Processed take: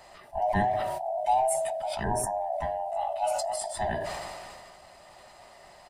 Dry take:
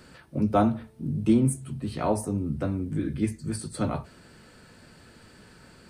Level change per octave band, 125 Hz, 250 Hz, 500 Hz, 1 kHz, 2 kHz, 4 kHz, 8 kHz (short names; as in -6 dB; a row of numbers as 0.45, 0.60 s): -11.0, -15.0, +2.5, +7.5, +5.5, +4.0, +4.0 dB